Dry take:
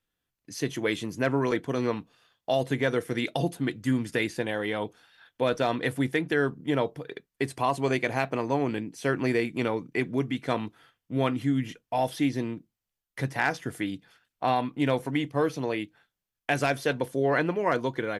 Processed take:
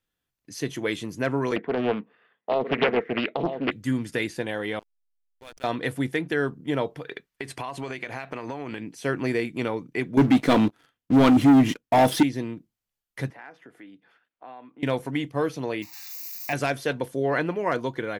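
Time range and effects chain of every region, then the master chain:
0:01.56–0:03.72: loudspeaker in its box 210–2,700 Hz, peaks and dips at 210 Hz +8 dB, 430 Hz +8 dB, 1,900 Hz +10 dB + single-tap delay 957 ms −9 dB + highs frequency-modulated by the lows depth 0.51 ms
0:04.79–0:05.64: first-order pre-emphasis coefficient 0.97 + slack as between gear wheels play −36.5 dBFS
0:06.90–0:08.95: parametric band 2,100 Hz +7 dB 2.6 octaves + downward compressor 16 to 1, threshold −28 dBFS
0:10.17–0:12.23: parametric band 270 Hz +6.5 dB 0.86 octaves + leveller curve on the samples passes 3
0:13.30–0:14.83: three-way crossover with the lows and the highs turned down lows −18 dB, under 210 Hz, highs −17 dB, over 2,900 Hz + downward compressor 2 to 1, threshold −54 dBFS
0:15.82–0:16.53: spike at every zero crossing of −27 dBFS + phaser with its sweep stopped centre 2,200 Hz, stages 8
whole clip: no processing

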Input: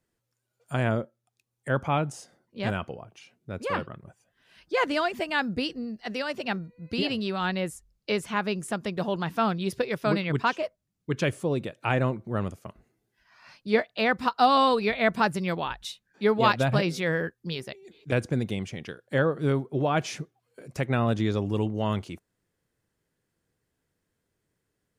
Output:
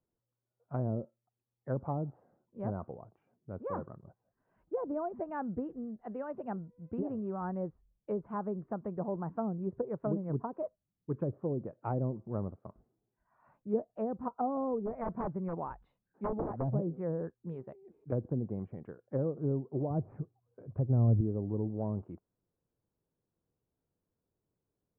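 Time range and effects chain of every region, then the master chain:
0:14.78–0:16.69: wrap-around overflow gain 17 dB + parametric band 2,100 Hz +3.5 dB 0.37 octaves
0:19.90–0:21.21: running median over 9 samples + parametric band 97 Hz +14.5 dB 0.79 octaves
whole clip: low-pass filter 1,100 Hz 24 dB per octave; treble cut that deepens with the level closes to 510 Hz, closed at −22 dBFS; level −6.5 dB

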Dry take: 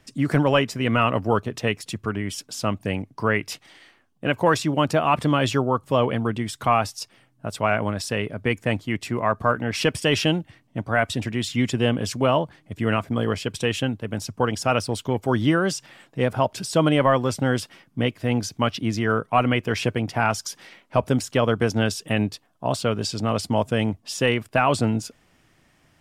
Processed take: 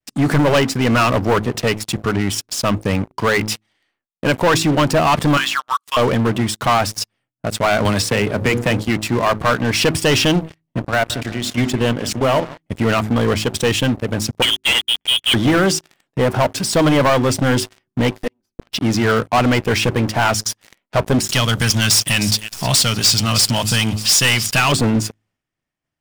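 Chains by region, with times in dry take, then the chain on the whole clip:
0:05.37–0:05.97: elliptic high-pass filter 1,100 Hz, stop band 70 dB + high-shelf EQ 7,700 Hz −6 dB + multiband upward and downward compressor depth 100%
0:07.85–0:08.88: mains-hum notches 60/120/180/240/300/360/420/480/540 Hz + multiband upward and downward compressor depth 100%
0:10.79–0:12.58: hum removal 49.67 Hz, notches 7 + output level in coarse steps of 11 dB + feedback echo with a low-pass in the loop 174 ms, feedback 53%, low-pass 4,200 Hz, level −20 dB
0:14.42–0:15.34: gap after every zero crossing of 0.23 ms + voice inversion scrambler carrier 3,400 Hz
0:18.10–0:18.72: lower of the sound and its delayed copy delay 3.9 ms + gate with flip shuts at −21 dBFS, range −26 dB
0:21.29–0:24.72: drawn EQ curve 140 Hz 0 dB, 460 Hz −13 dB, 1,100 Hz −4 dB, 5,000 Hz +14 dB + upward compression, threshold −22 dBFS + delay with a high-pass on its return 309 ms, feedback 47%, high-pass 2,000 Hz, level −16 dB
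whole clip: hum removal 53.68 Hz, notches 7; downward expander −54 dBFS; leveller curve on the samples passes 5; level −7.5 dB

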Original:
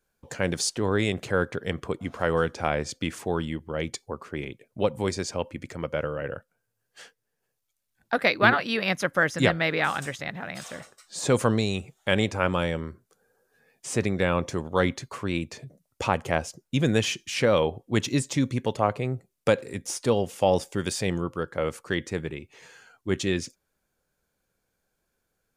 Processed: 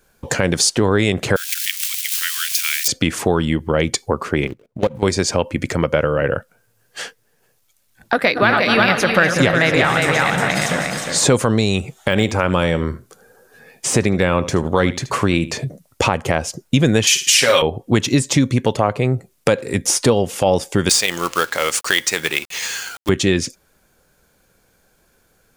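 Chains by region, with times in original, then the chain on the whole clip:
0:01.36–0:02.88: spike at every zero crossing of −25.5 dBFS + inverse Chebyshev high-pass filter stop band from 660 Hz, stop band 60 dB
0:04.47–0:05.03: running median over 25 samples + output level in coarse steps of 23 dB
0:08.14–0:11.24: feedback delay that plays each chunk backwards 124 ms, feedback 62%, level −10.5 dB + single-tap delay 358 ms −6 dB
0:11.95–0:15.55: de-essing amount 65% + single-tap delay 77 ms −18 dB
0:17.07–0:17.62: spectral tilt +4.5 dB per octave + comb filter 7.4 ms, depth 94% + flutter between parallel walls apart 9.8 metres, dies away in 0.31 s
0:20.89–0:23.09: meter weighting curve ITU-R 468 + log-companded quantiser 4 bits
whole clip: downward compressor 3 to 1, threshold −32 dBFS; boost into a limiter +19 dB; level −1 dB

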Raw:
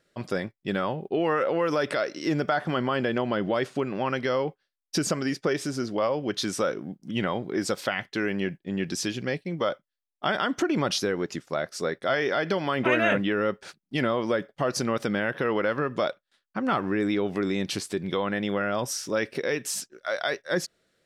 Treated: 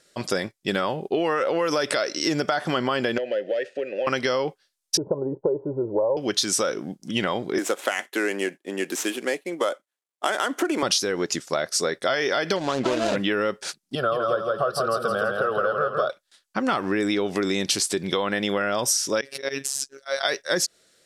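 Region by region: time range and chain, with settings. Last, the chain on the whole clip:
0:03.18–0:04.07: leveller curve on the samples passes 1 + formant filter e + multiband upward and downward compressor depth 70%
0:04.97–0:06.17: Butterworth low-pass 920 Hz 48 dB per octave + comb filter 2.1 ms, depth 72%
0:07.58–0:10.83: running median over 9 samples + high-pass filter 270 Hz 24 dB per octave + parametric band 5,000 Hz −5.5 dB 1.1 octaves
0:12.56–0:13.16: running median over 25 samples + high-frequency loss of the air 72 metres
0:13.95–0:16.10: high shelf with overshoot 1,600 Hz −7.5 dB, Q 3 + phaser with its sweep stopped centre 1,400 Hz, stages 8 + repeating echo 165 ms, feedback 42%, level −4 dB
0:19.21–0:20.25: de-essing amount 70% + volume swells 109 ms + phases set to zero 137 Hz
whole clip: low-pass filter 11,000 Hz 12 dB per octave; bass and treble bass −6 dB, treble +12 dB; downward compressor, threshold −26 dBFS; level +6.5 dB

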